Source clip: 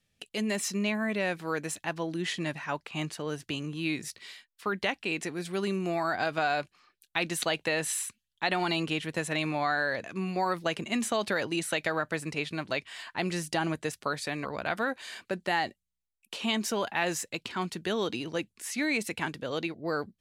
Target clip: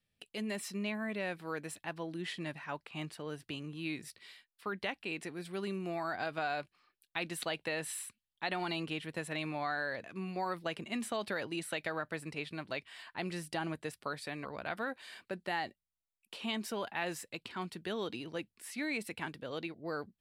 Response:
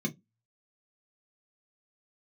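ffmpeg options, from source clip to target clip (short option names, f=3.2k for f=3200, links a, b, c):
-af "equalizer=f=6.5k:t=o:w=0.38:g=-9,volume=-7.5dB"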